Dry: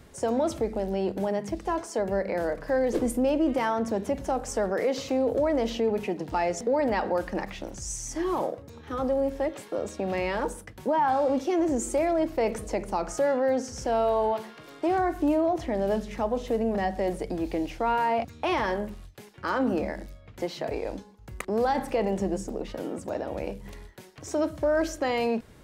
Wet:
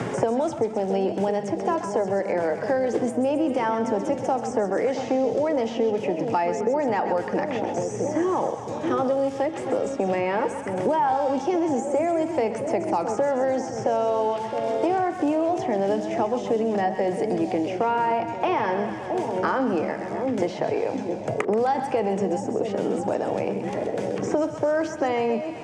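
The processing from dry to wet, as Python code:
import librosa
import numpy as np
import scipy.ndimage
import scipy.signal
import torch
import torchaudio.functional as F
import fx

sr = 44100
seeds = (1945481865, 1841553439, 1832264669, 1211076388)

y = fx.cabinet(x, sr, low_hz=110.0, low_slope=24, high_hz=8200.0, hz=(120.0, 430.0, 810.0, 4100.0), db=(8, 4, 5, -8))
y = fx.echo_split(y, sr, split_hz=730.0, low_ms=666, high_ms=130, feedback_pct=52, wet_db=-10.0)
y = fx.band_squash(y, sr, depth_pct=100)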